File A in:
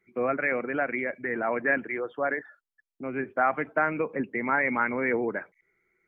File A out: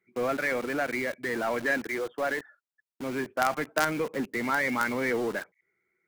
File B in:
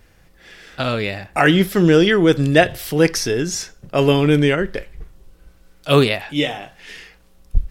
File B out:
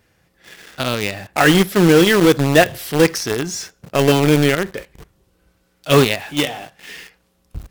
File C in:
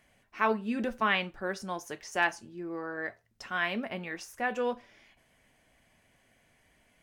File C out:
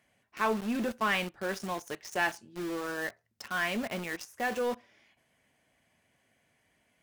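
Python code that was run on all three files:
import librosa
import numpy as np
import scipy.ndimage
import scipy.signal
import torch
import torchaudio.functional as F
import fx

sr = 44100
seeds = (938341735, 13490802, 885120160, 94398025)

p1 = scipy.signal.sosfilt(scipy.signal.butter(2, 82.0, 'highpass', fs=sr, output='sos'), x)
p2 = fx.quant_companded(p1, sr, bits=2)
p3 = p1 + F.gain(torch.from_numpy(p2), -7.0).numpy()
y = F.gain(torch.from_numpy(p3), -4.5).numpy()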